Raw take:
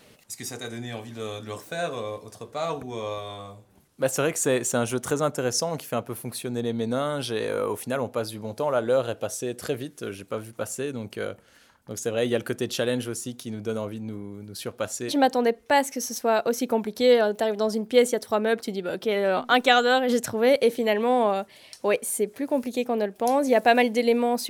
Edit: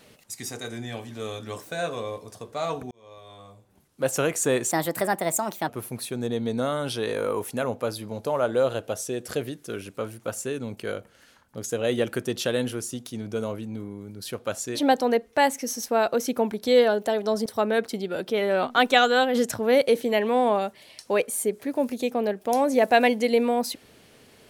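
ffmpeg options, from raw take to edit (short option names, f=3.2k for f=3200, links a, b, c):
-filter_complex "[0:a]asplit=5[a][b][c][d][e];[a]atrim=end=2.91,asetpts=PTS-STARTPTS,afade=t=out:st=2.906:d=0.004:c=hsin[f];[b]atrim=start=2.91:end=4.714,asetpts=PTS-STARTPTS,afade=t=in:d=1.24[g];[c]atrim=start=4.71:end=6.02,asetpts=PTS-STARTPTS,asetrate=59094,aresample=44100[h];[d]atrim=start=6.016:end=17.792[i];[e]atrim=start=18.198[j];[f][g]concat=n=2:v=0:a=1[k];[k][h]acrossfade=d=0.004:c1=hsin:c2=hsin[l];[l][i]acrossfade=d=0.004:c1=hsin:c2=hsin[m];[m][j]acrossfade=d=0.004:c1=hsin:c2=hsin"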